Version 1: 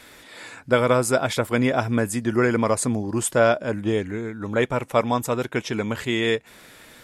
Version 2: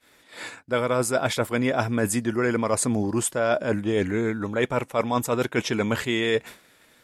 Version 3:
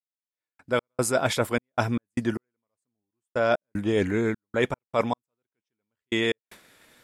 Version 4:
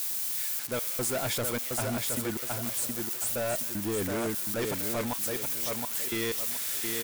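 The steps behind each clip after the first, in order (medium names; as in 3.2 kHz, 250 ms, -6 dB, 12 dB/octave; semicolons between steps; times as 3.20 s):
expander -35 dBFS; bass shelf 100 Hz -5 dB; reverse; compression 6:1, threshold -29 dBFS, peak gain reduction 15.5 dB; reverse; trim +8.5 dB
trance gate "...x.xxx.x.x.." 76 bpm -60 dB
zero-crossing glitches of -16.5 dBFS; feedback delay 718 ms, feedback 29%, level -6 dB; saturation -24 dBFS, distortion -9 dB; trim -2.5 dB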